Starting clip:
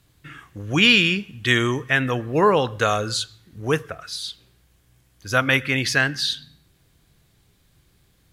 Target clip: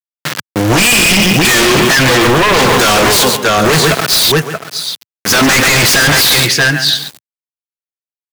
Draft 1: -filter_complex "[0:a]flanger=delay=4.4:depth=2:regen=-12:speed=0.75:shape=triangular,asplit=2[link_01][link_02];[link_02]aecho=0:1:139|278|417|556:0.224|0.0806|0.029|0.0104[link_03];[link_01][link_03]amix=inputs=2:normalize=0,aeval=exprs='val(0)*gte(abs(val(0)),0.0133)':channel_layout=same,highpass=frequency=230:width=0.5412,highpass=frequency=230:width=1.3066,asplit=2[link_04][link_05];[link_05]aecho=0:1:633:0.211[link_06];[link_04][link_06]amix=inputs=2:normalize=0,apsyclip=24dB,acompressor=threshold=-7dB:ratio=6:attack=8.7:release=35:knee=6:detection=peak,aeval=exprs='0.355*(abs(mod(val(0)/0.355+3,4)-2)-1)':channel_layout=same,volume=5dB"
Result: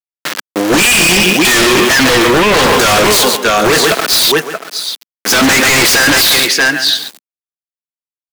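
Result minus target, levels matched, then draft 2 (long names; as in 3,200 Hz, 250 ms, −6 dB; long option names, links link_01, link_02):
125 Hz band −7.0 dB
-filter_complex "[0:a]flanger=delay=4.4:depth=2:regen=-12:speed=0.75:shape=triangular,asplit=2[link_01][link_02];[link_02]aecho=0:1:139|278|417|556:0.224|0.0806|0.029|0.0104[link_03];[link_01][link_03]amix=inputs=2:normalize=0,aeval=exprs='val(0)*gte(abs(val(0)),0.0133)':channel_layout=same,highpass=frequency=110:width=0.5412,highpass=frequency=110:width=1.3066,asplit=2[link_04][link_05];[link_05]aecho=0:1:633:0.211[link_06];[link_04][link_06]amix=inputs=2:normalize=0,apsyclip=24dB,acompressor=threshold=-7dB:ratio=6:attack=8.7:release=35:knee=6:detection=peak,aeval=exprs='0.355*(abs(mod(val(0)/0.355+3,4)-2)-1)':channel_layout=same,volume=5dB"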